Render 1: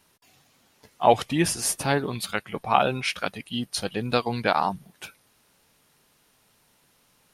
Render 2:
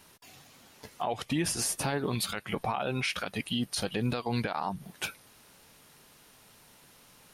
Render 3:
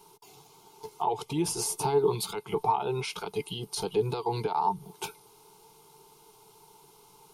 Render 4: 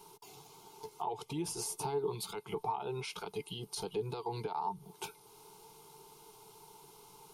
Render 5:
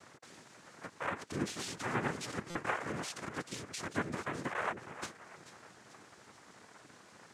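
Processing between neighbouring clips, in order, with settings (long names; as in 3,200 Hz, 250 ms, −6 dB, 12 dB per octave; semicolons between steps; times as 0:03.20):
downward compressor 12 to 1, threshold −29 dBFS, peak gain reduction 18.5 dB; brickwall limiter −26.5 dBFS, peak gain reduction 11.5 dB; level +6 dB
phaser with its sweep stopped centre 370 Hz, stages 8; hollow resonant body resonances 430/890/2,100 Hz, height 14 dB, ringing for 45 ms
downward compressor 1.5 to 1, threshold −50 dBFS, peak gain reduction 11 dB
echo with a time of its own for lows and highs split 1,800 Hz, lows 317 ms, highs 437 ms, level −13 dB; cochlear-implant simulation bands 3; buffer that repeats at 0:02.50, samples 256, times 8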